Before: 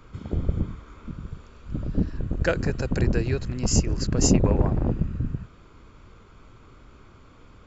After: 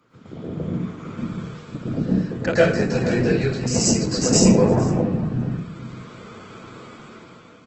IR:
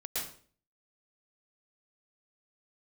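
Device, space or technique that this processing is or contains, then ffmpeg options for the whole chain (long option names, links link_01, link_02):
far-field microphone of a smart speaker: -filter_complex "[0:a]asplit=2[link_01][link_02];[link_02]adelay=454.8,volume=-15dB,highshelf=frequency=4000:gain=-10.2[link_03];[link_01][link_03]amix=inputs=2:normalize=0[link_04];[1:a]atrim=start_sample=2205[link_05];[link_04][link_05]afir=irnorm=-1:irlink=0,highpass=frequency=130:width=0.5412,highpass=frequency=130:width=1.3066,dynaudnorm=framelen=110:gausssize=17:maxgain=13dB,volume=-1.5dB" -ar 48000 -c:a libopus -b:a 16k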